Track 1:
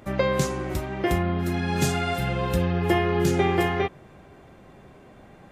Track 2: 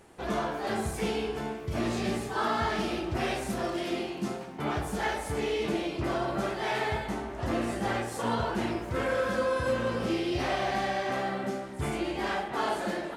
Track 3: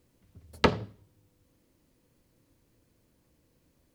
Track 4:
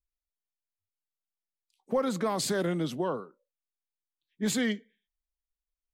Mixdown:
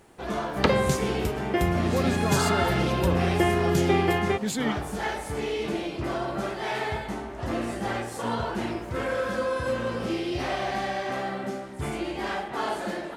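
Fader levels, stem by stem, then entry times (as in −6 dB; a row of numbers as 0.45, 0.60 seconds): −1.0, +0.5, 0.0, −0.5 decibels; 0.50, 0.00, 0.00, 0.00 seconds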